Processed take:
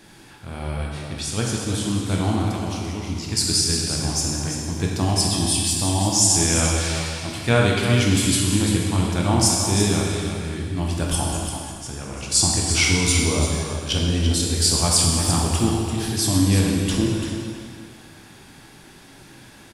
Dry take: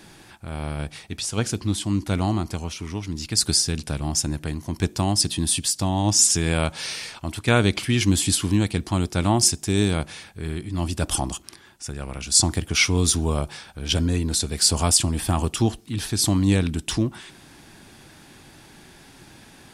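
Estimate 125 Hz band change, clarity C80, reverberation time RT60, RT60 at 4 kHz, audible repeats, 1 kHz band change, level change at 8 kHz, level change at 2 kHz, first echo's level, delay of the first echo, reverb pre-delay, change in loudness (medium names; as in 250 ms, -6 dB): +2.5 dB, 0.5 dB, 2.0 s, 1.8 s, 1, +2.0 dB, +2.0 dB, +2.5 dB, -7.5 dB, 341 ms, 7 ms, +2.0 dB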